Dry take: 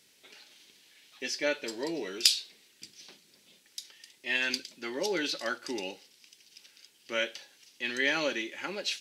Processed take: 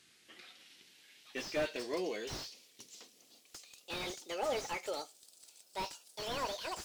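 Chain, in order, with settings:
gliding playback speed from 80% → 183%
dynamic equaliser 5,400 Hz, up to +5 dB, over −43 dBFS, Q 0.93
slew-rate limiting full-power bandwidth 36 Hz
level −2 dB

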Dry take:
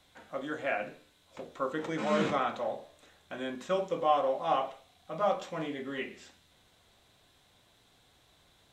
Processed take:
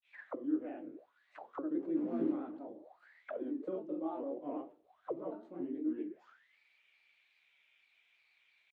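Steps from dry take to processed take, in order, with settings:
granular cloud 174 ms, grains 18 per second, spray 29 ms, pitch spread up and down by 3 semitones
envelope filter 310–2,600 Hz, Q 12, down, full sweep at −38 dBFS
level +13 dB

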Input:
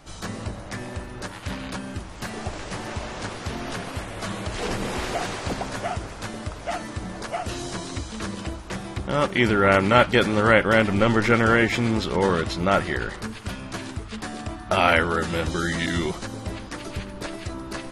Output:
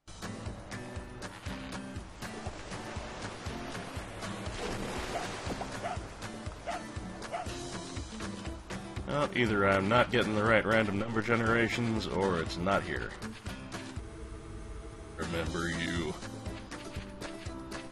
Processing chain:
noise gate with hold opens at −34 dBFS
frozen spectrum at 0:14.03, 1.17 s
saturating transformer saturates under 420 Hz
level −8 dB

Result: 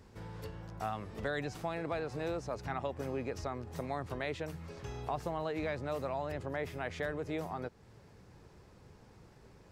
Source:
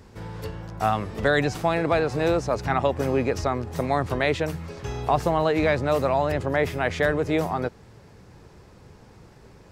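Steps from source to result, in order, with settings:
downward compressor 1.5 to 1, threshold −35 dBFS, peak gain reduction 7 dB
level −8.5 dB

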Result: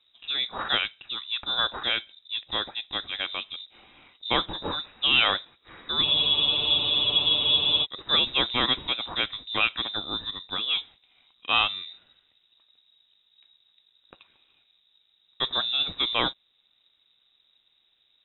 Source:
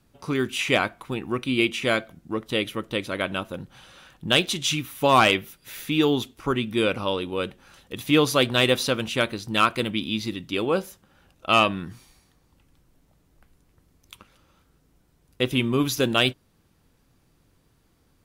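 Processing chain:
gain on one half-wave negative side −3 dB
voice inversion scrambler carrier 3,800 Hz
frozen spectrum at 0:06.06, 1.77 s
level −3 dB

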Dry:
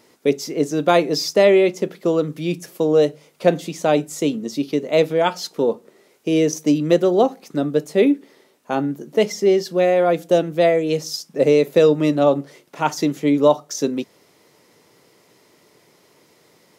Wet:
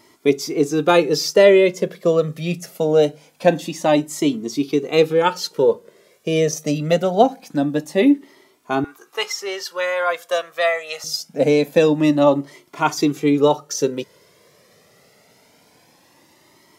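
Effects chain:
0:08.84–0:11.04: high-pass with resonance 1,100 Hz, resonance Q 2.4
flanger whose copies keep moving one way rising 0.24 Hz
level +6.5 dB

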